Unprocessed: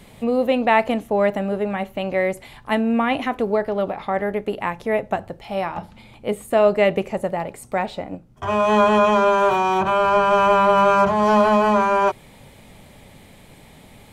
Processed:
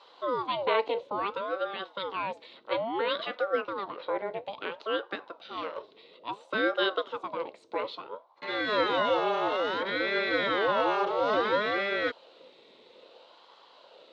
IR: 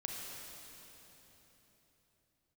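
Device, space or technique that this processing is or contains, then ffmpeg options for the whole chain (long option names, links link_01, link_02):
voice changer toy: -af "aeval=exprs='val(0)*sin(2*PI*600*n/s+600*0.65/0.59*sin(2*PI*0.59*n/s))':channel_layout=same,highpass=490,equalizer=frequency=510:width_type=q:width=4:gain=7,equalizer=frequency=760:width_type=q:width=4:gain=-8,equalizer=frequency=1200:width_type=q:width=4:gain=-5,equalizer=frequency=1700:width_type=q:width=4:gain=-10,equalizer=frequency=2400:width_type=q:width=4:gain=-4,equalizer=frequency=3900:width_type=q:width=4:gain=8,lowpass=frequency=4500:width=0.5412,lowpass=frequency=4500:width=1.3066,volume=-3dB"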